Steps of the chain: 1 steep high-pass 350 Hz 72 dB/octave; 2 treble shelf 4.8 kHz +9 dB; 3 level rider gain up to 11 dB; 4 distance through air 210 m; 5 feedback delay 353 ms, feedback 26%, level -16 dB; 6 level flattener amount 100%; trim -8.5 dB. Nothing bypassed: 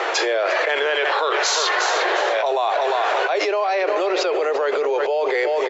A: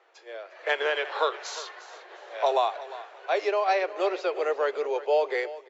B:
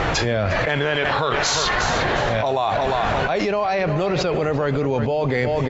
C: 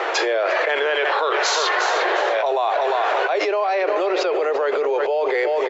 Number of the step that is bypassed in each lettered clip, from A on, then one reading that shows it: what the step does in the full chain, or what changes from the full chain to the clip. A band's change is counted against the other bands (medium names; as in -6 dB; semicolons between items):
6, crest factor change +4.0 dB; 1, 250 Hz band +9.5 dB; 2, 4 kHz band -2.0 dB